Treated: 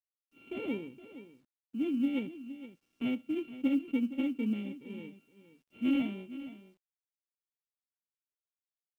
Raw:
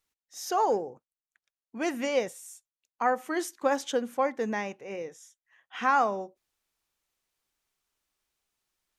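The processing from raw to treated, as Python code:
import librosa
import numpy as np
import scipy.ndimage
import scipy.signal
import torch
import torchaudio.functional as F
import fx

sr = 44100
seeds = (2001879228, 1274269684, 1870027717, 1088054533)

p1 = np.r_[np.sort(x[:len(x) // 32 * 32].reshape(-1, 32), axis=1).ravel(), x[len(x) // 32 * 32:]]
p2 = fx.formant_cascade(p1, sr, vowel='i')
p3 = p2 + fx.echo_single(p2, sr, ms=467, db=-14.0, dry=0)
p4 = fx.quant_companded(p3, sr, bits=8)
p5 = fx.low_shelf(p4, sr, hz=370.0, db=5.5)
y = p5 * librosa.db_to_amplitude(4.0)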